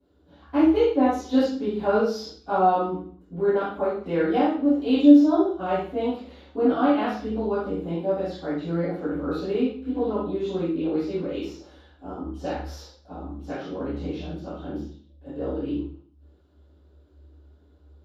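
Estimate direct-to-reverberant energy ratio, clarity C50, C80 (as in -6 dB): -19.0 dB, 0.5 dB, 5.0 dB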